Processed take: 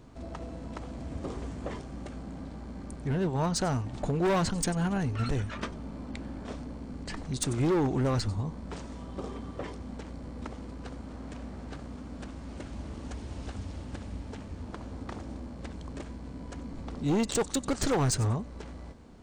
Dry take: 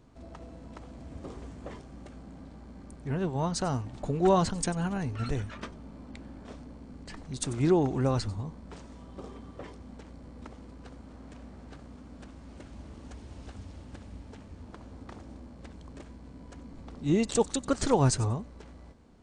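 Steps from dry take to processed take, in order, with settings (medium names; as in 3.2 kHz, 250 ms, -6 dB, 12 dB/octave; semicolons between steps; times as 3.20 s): in parallel at 0 dB: compression, threshold -37 dBFS, peak gain reduction 17.5 dB; on the sum: hard clipper -22.5 dBFS, distortion -10 dB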